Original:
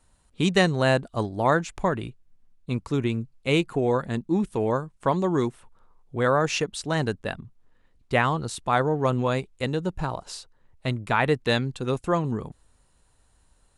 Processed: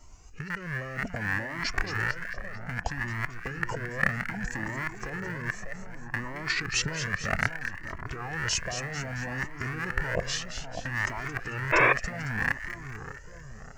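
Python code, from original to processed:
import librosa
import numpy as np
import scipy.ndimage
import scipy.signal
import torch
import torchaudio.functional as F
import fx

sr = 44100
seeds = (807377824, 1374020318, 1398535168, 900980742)

y = fx.rattle_buzz(x, sr, strikes_db=-38.0, level_db=-13.0)
y = fx.peak_eq(y, sr, hz=5000.0, db=-12.0, octaves=0.31)
y = fx.over_compress(y, sr, threshold_db=-33.0, ratio=-1.0)
y = fx.echo_split(y, sr, split_hz=1800.0, low_ms=599, high_ms=222, feedback_pct=52, wet_db=-8)
y = fx.spec_paint(y, sr, seeds[0], shape='noise', start_s=11.72, length_s=0.21, low_hz=280.0, high_hz=3800.0, level_db=-20.0)
y = fx.formant_shift(y, sr, semitones=-6)
y = fx.comb_cascade(y, sr, direction='rising', hz=0.63)
y = y * librosa.db_to_amplitude(4.5)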